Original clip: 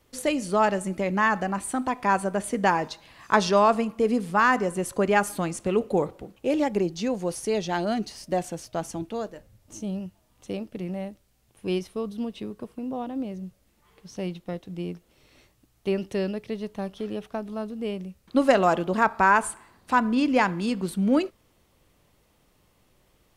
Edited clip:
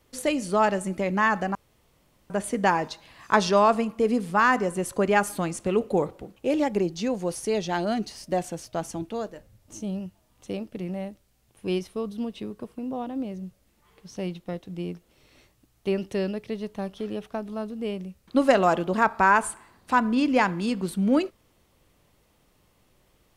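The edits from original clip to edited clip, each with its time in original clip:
1.55–2.3 room tone

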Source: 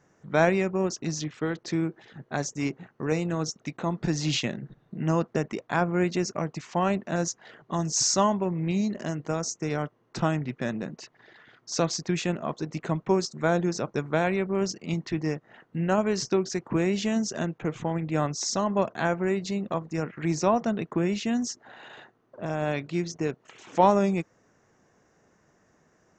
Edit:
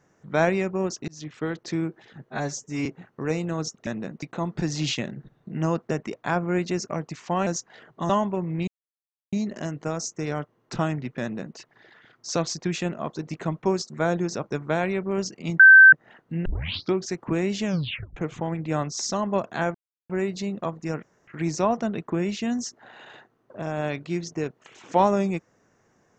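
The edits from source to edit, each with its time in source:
1.08–1.36 fade in
2.3–2.67 stretch 1.5×
6.92–7.18 cut
7.81–8.18 cut
8.76 insert silence 0.65 s
10.65–11.01 copy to 3.68
15.03–15.36 bleep 1550 Hz -6.5 dBFS
15.89 tape start 0.48 s
17.08 tape stop 0.52 s
19.18 insert silence 0.35 s
20.11 insert room tone 0.25 s

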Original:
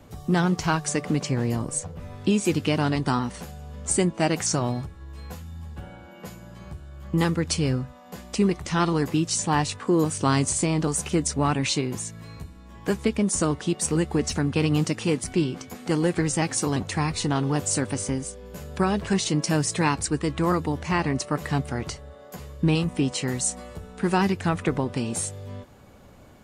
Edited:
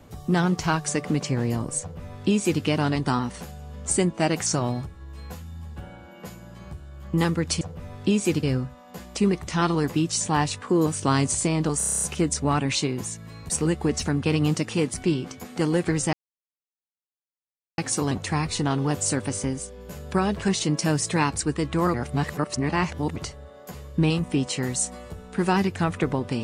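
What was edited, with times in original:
1.81–2.63 copy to 7.61
10.96 stutter 0.03 s, 9 plays
12.44–13.8 cut
16.43 insert silence 1.65 s
20.59–21.81 reverse

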